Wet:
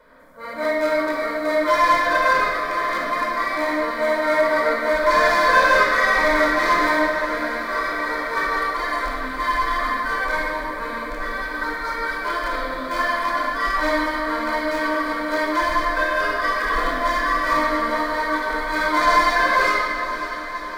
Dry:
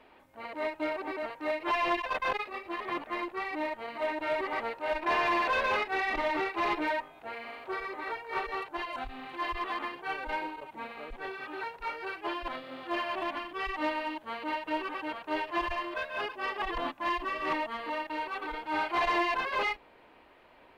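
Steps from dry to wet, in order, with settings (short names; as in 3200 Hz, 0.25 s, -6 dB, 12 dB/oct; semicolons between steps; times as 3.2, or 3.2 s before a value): rattling part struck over -43 dBFS, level -29 dBFS; high shelf 2100 Hz +11.5 dB; fixed phaser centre 550 Hz, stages 8; diffused feedback echo 0.539 s, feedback 75%, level -12 dB; shoebox room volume 2600 m³, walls mixed, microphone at 4.9 m; mismatched tape noise reduction decoder only; gain +5 dB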